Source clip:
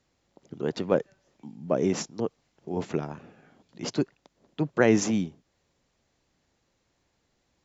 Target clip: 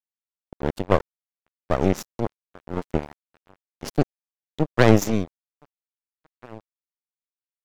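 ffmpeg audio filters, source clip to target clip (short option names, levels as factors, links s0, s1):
-filter_complex "[0:a]asplit=2[s0][s1];[s1]adelay=1633,volume=0.158,highshelf=f=4000:g=-36.7[s2];[s0][s2]amix=inputs=2:normalize=0,aeval=exprs='0.422*(cos(1*acos(clip(val(0)/0.422,-1,1)))-cos(1*PI/2))+0.133*(cos(4*acos(clip(val(0)/0.422,-1,1)))-cos(4*PI/2))':c=same,aeval=exprs='sgn(val(0))*max(abs(val(0))-0.0251,0)':c=same,volume=1.58"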